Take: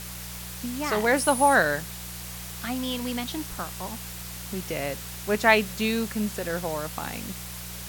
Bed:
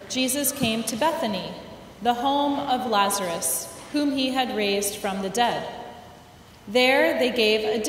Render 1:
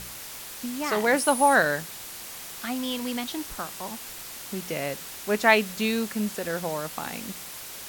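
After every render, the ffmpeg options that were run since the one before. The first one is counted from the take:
-af "bandreject=f=60:t=h:w=4,bandreject=f=120:t=h:w=4,bandreject=f=180:t=h:w=4"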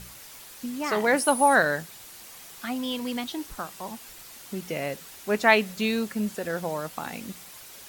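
-af "afftdn=nr=7:nf=-40"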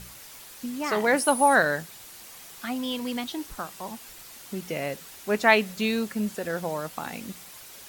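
-af anull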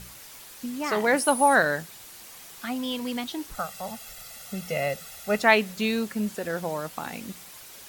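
-filter_complex "[0:a]asettb=1/sr,asplit=3[s0][s1][s2];[s0]atrim=end=3.544[s3];[s1]atrim=start=3.54:end=5.42,asetpts=PTS-STARTPTS,afade=t=in:d=0.004:c=qsin,afade=t=out:st=1.876:d=0.004:c=qsin,aecho=1:1:1.5:0.85,atrim=end_sample=82908[s4];[s2]atrim=start=5.416[s5];[s3][s4]acrossfade=d=0.004:c1=hsin:c2=qsin[s6];[s6][s5]acrossfade=d=0.004:c1=qsin:c2=hsin"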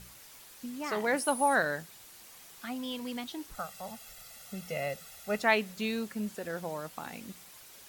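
-af "volume=0.447"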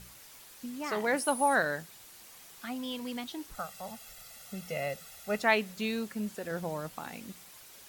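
-filter_complex "[0:a]asettb=1/sr,asplit=3[s0][s1][s2];[s0]atrim=end=6.514[s3];[s1]atrim=start=6.51:end=6.97,asetpts=PTS-STARTPTS,afade=t=in:d=0.004:c=qsin,afade=t=out:st=0.456:d=0.004:c=qsin,lowshelf=f=220:g=7.5[s4];[s2]atrim=start=6.966[s5];[s3][s4]acrossfade=d=0.004:c1=hsin:c2=qsin[s6];[s6][s5]acrossfade=d=0.004:c1=qsin:c2=hsin"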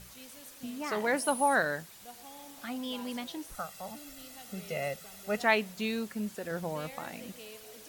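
-filter_complex "[1:a]volume=0.0376[s0];[0:a][s0]amix=inputs=2:normalize=0"

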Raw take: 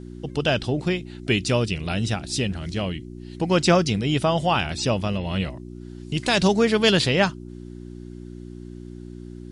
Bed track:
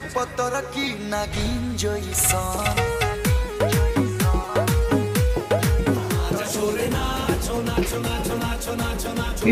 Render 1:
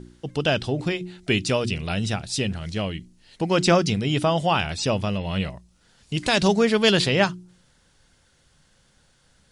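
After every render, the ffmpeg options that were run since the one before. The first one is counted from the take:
-af "bandreject=f=60:t=h:w=4,bandreject=f=120:t=h:w=4,bandreject=f=180:t=h:w=4,bandreject=f=240:t=h:w=4,bandreject=f=300:t=h:w=4,bandreject=f=360:t=h:w=4"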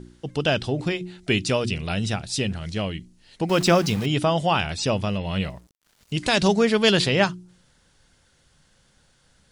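-filter_complex "[0:a]asettb=1/sr,asplit=3[s0][s1][s2];[s0]atrim=end=3.494[s3];[s1]atrim=start=3.49:end=4.06,asetpts=PTS-STARTPTS,afade=t=in:d=0.004:c=qsin,afade=t=out:st=0.566:d=0.004:c=qsin,aeval=exprs='val(0)*gte(abs(val(0)),0.0266)':c=same[s4];[s2]atrim=start=4.056[s5];[s3][s4]acrossfade=d=0.004:c1=hsin:c2=qsin[s6];[s6][s5]acrossfade=d=0.004:c1=qsin:c2=hsin,asettb=1/sr,asplit=3[s7][s8][s9];[s7]atrim=end=5.374[s10];[s8]atrim=start=5.37:end=6.13,asetpts=PTS-STARTPTS,afade=t=in:d=0.004:c=qsin,afade=t=out:st=0.756:d=0.004:c=qsin,aeval=exprs='val(0)*gte(abs(val(0)),0.00237)':c=same[s11];[s9]atrim=start=6.126[s12];[s10][s11]acrossfade=d=0.004:c1=hsin:c2=qsin[s13];[s13][s12]acrossfade=d=0.004:c1=qsin:c2=hsin"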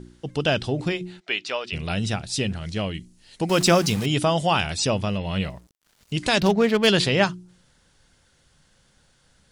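-filter_complex "[0:a]asplit=3[s0][s1][s2];[s0]afade=t=out:st=1.19:d=0.02[s3];[s1]highpass=710,lowpass=3800,afade=t=in:st=1.19:d=0.02,afade=t=out:st=1.72:d=0.02[s4];[s2]afade=t=in:st=1.72:d=0.02[s5];[s3][s4][s5]amix=inputs=3:normalize=0,asettb=1/sr,asplit=3[s6][s7][s8];[s6]atrim=end=2.944[s9];[s7]atrim=start=2.94:end=4.87,asetpts=PTS-STARTPTS,afade=t=in:d=0.004:c=qsin,afade=t=out:st=1.926:d=0.004:c=qsin,equalizer=f=9600:w=0.55:g=6.5[s10];[s8]atrim=start=4.866[s11];[s9][s10]acrossfade=d=0.004:c1=hsin:c2=qsin[s12];[s12][s11]acrossfade=d=0.004:c1=qsin:c2=hsin,asplit=3[s13][s14][s15];[s13]afade=t=out:st=6.39:d=0.02[s16];[s14]adynamicsmooth=sensitivity=2.5:basefreq=1700,afade=t=in:st=6.39:d=0.02,afade=t=out:st=6.86:d=0.02[s17];[s15]afade=t=in:st=6.86:d=0.02[s18];[s16][s17][s18]amix=inputs=3:normalize=0"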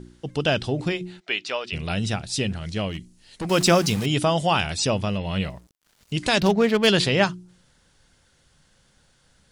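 -filter_complex "[0:a]asplit=3[s0][s1][s2];[s0]afade=t=out:st=2.88:d=0.02[s3];[s1]asoftclip=type=hard:threshold=0.0531,afade=t=in:st=2.88:d=0.02,afade=t=out:st=3.49:d=0.02[s4];[s2]afade=t=in:st=3.49:d=0.02[s5];[s3][s4][s5]amix=inputs=3:normalize=0"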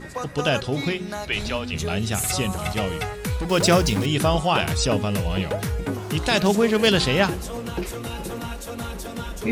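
-filter_complex "[1:a]volume=0.473[s0];[0:a][s0]amix=inputs=2:normalize=0"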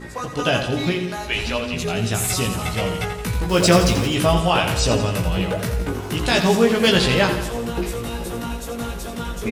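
-filter_complex "[0:a]asplit=2[s0][s1];[s1]adelay=17,volume=0.708[s2];[s0][s2]amix=inputs=2:normalize=0,aecho=1:1:85|170|255|340|425|510|595:0.355|0.206|0.119|0.0692|0.0402|0.0233|0.0135"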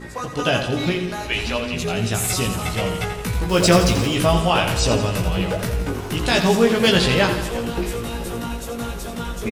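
-filter_complex "[0:a]asplit=6[s0][s1][s2][s3][s4][s5];[s1]adelay=351,afreqshift=-62,volume=0.126[s6];[s2]adelay=702,afreqshift=-124,volume=0.0692[s7];[s3]adelay=1053,afreqshift=-186,volume=0.038[s8];[s4]adelay=1404,afreqshift=-248,volume=0.0209[s9];[s5]adelay=1755,afreqshift=-310,volume=0.0115[s10];[s0][s6][s7][s8][s9][s10]amix=inputs=6:normalize=0"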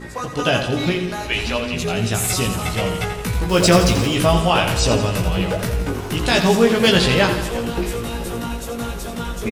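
-af "volume=1.19,alimiter=limit=0.891:level=0:latency=1"

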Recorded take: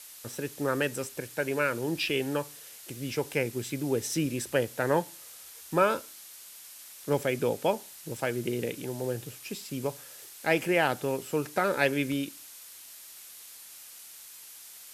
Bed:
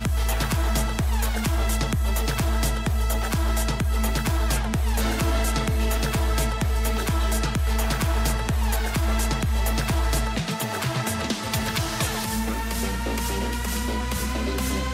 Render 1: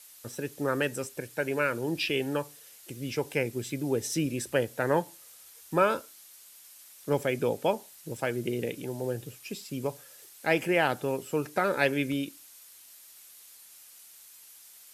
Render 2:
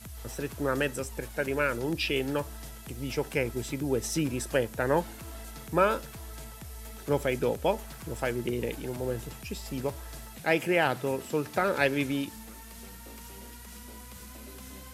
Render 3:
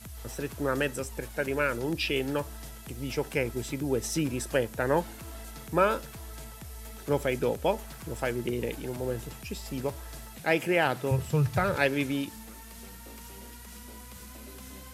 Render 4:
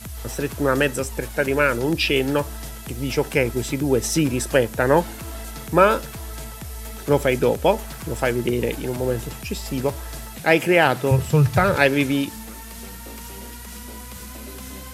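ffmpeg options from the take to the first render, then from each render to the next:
-af "afftdn=nr=6:nf=-48"
-filter_complex "[1:a]volume=0.0944[s0];[0:a][s0]amix=inputs=2:normalize=0"
-filter_complex "[0:a]asettb=1/sr,asplit=3[s0][s1][s2];[s0]atrim=end=11.114[s3];[s1]atrim=start=11.11:end=11.76,asetpts=PTS-STARTPTS,afade=t=in:d=0.004:c=qsin,afade=t=out:st=0.646:d=0.004:c=qsin,lowshelf=f=180:t=q:w=3:g=11.5[s4];[s2]atrim=start=11.756[s5];[s3][s4]acrossfade=d=0.004:c1=hsin:c2=qsin[s6];[s6][s5]acrossfade=d=0.004:c1=qsin:c2=hsin"
-af "volume=2.82,alimiter=limit=0.891:level=0:latency=1"

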